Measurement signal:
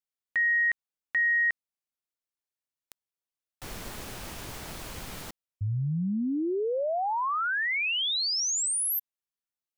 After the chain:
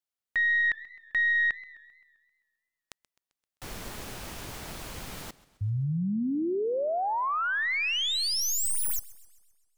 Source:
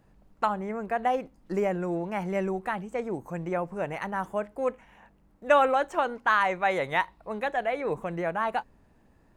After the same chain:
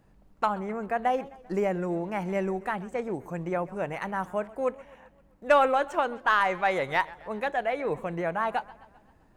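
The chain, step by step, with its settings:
stylus tracing distortion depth 0.026 ms
feedback echo with a swinging delay time 131 ms, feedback 55%, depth 138 cents, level −20.5 dB

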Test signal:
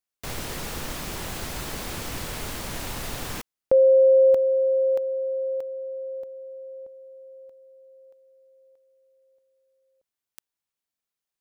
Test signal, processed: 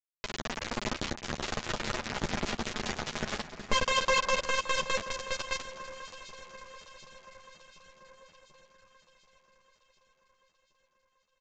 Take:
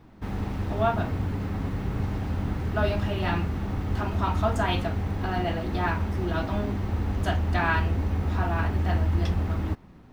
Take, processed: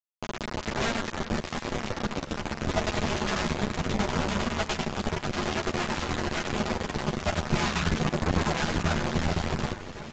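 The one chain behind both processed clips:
lower of the sound and its delayed copy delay 4.8 ms
in parallel at −2 dB: brickwall limiter −21 dBFS
on the sum: high-shelf EQ 4,200 Hz −4.5 dB
auto-filter low-pass saw down 4.9 Hz 280–4,200 Hz
downward compressor 3 to 1, threshold −29 dBFS
repeating echo 98 ms, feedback 52%, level −4.5 dB
bit reduction 4 bits
downsampling to 16,000 Hz
parametric band 170 Hz +4.5 dB 1.4 octaves
on a send: delay that swaps between a low-pass and a high-pass 368 ms, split 2,200 Hz, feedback 78%, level −12 dB
on the sum: multi-voice chorus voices 6, 1 Hz, delay 11 ms, depth 3 ms
level +1.5 dB

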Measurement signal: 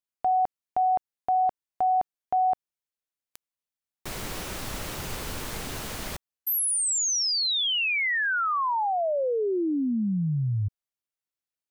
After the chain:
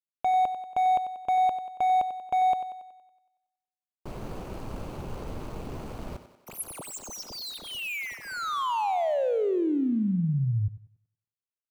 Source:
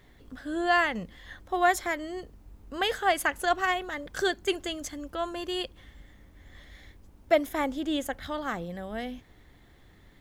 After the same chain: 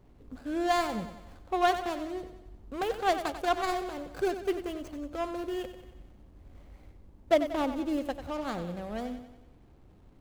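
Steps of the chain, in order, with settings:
running median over 25 samples
feedback echo with a high-pass in the loop 93 ms, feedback 54%, high-pass 160 Hz, level −10.5 dB

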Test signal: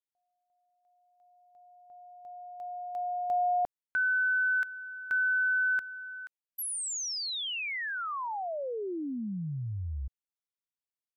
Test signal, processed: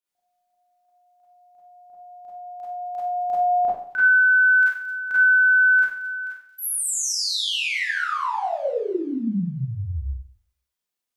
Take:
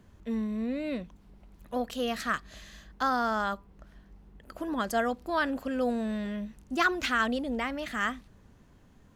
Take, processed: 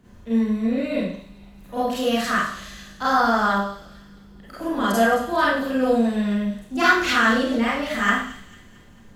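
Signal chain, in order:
delay with a high-pass on its return 223 ms, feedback 51%, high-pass 3,400 Hz, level −12 dB
four-comb reverb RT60 0.56 s, combs from 31 ms, DRR −9 dB

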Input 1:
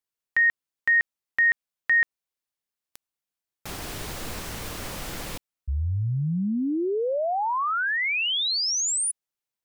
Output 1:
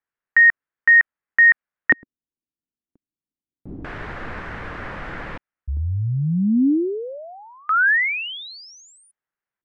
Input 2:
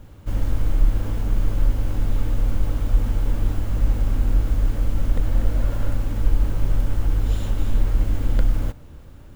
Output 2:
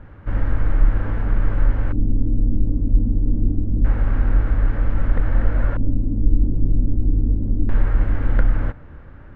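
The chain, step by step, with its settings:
auto-filter low-pass square 0.26 Hz 280–1,700 Hz
level +2 dB

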